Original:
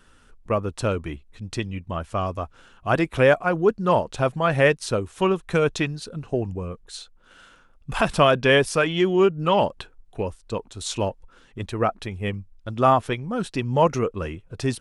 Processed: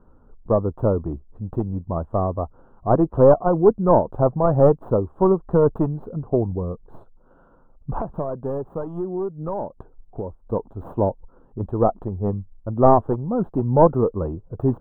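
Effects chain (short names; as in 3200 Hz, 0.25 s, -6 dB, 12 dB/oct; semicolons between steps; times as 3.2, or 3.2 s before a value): tracing distortion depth 0.5 ms; inverse Chebyshev low-pass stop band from 2000 Hz, stop band 40 dB; 7.99–10.43 compressor 3:1, threshold -33 dBFS, peak gain reduction 15.5 dB; gain +4.5 dB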